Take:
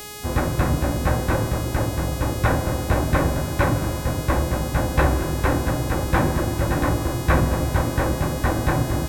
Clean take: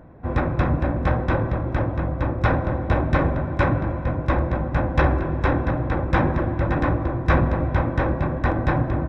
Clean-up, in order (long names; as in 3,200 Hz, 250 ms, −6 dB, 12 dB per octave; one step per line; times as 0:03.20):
hum removal 417.7 Hz, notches 39